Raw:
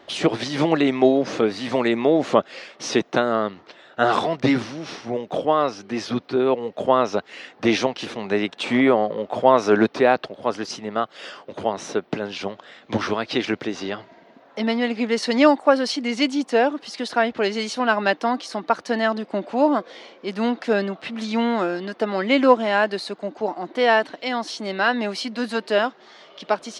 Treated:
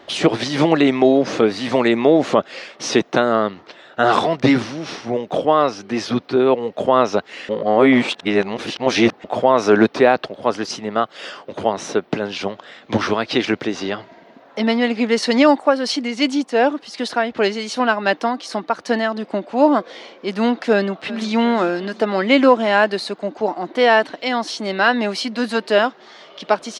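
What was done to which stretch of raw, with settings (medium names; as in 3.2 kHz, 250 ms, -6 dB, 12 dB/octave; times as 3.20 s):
7.49–9.24 s: reverse
15.58–19.63 s: tremolo 2.7 Hz, depth 45%
20.72–21.33 s: echo throw 360 ms, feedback 60%, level -16.5 dB
whole clip: loudness maximiser +5.5 dB; trim -1 dB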